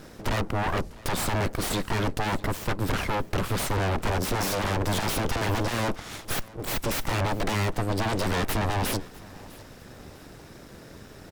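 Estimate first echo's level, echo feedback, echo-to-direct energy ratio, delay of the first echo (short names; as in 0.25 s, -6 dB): -21.5 dB, 34%, -21.0 dB, 0.652 s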